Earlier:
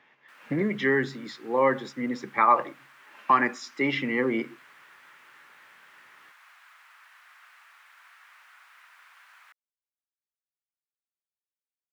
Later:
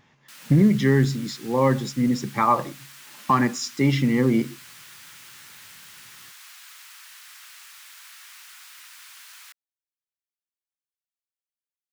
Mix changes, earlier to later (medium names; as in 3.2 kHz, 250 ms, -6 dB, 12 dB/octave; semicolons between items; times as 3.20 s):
speech: remove frequency weighting D; master: remove three-band isolator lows -14 dB, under 310 Hz, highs -22 dB, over 2.1 kHz